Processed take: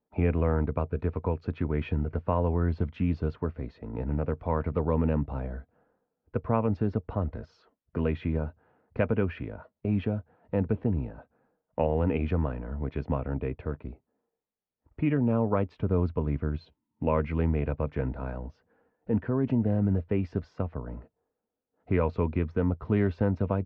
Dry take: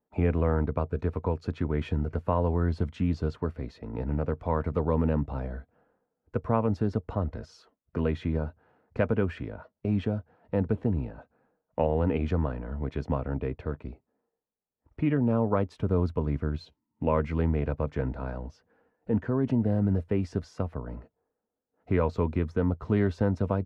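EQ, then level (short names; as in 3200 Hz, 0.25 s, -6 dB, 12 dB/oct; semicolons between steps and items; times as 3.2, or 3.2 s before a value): dynamic EQ 2500 Hz, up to +6 dB, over -56 dBFS, Q 2.8; air absorption 230 m; 0.0 dB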